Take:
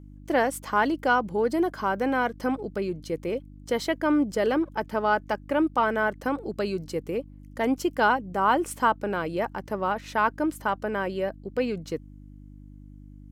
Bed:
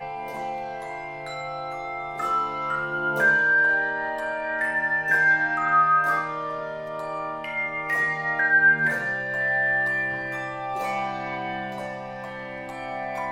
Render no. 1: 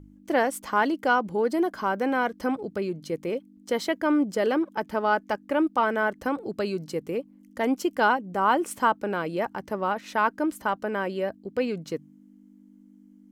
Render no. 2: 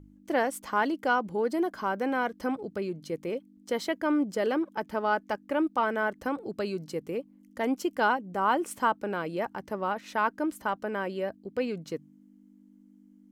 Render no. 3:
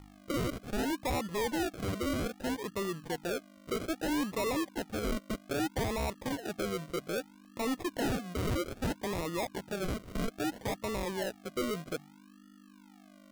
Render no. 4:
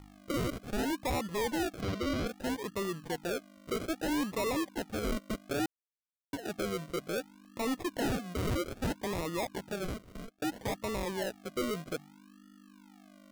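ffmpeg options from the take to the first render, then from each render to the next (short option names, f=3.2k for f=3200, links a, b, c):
-af "bandreject=f=50:t=h:w=4,bandreject=f=100:t=h:w=4,bandreject=f=150:t=h:w=4"
-af "volume=-3.5dB"
-af "acrusher=samples=40:mix=1:aa=0.000001:lfo=1:lforange=24:lforate=0.62,asoftclip=type=tanh:threshold=-28dB"
-filter_complex "[0:a]asettb=1/sr,asplit=3[a][b][c];[a]atrim=end=1.814[d];[b]atrim=start=1.81:end=2.27,asetpts=PTS-STARTPTS,afade=t=in:d=0.004:c=qsin,afade=t=out:st=0.456:d=0.004:c=qsin,highshelf=f=6.5k:t=q:w=1.5:g=-7[e];[c]atrim=start=2.266[f];[d][e]acrossfade=d=0.004:c1=hsin:c2=qsin[g];[g][f]acrossfade=d=0.004:c1=qsin:c2=hsin,asplit=4[h][i][j][k];[h]atrim=end=5.66,asetpts=PTS-STARTPTS,afade=t=out:st=5.656:d=0.004:c=hsin[l];[i]atrim=start=5.66:end=6.33,asetpts=PTS-STARTPTS,volume=0[m];[j]atrim=start=6.33:end=10.42,asetpts=PTS-STARTPTS,afade=t=in:d=0.004:c=hsin,afade=t=out:st=3.37:d=0.72[n];[k]atrim=start=10.42,asetpts=PTS-STARTPTS,afade=t=in:d=0.004:c=hsin[o];[l][m][n][o]concat=n=4:v=0:a=1"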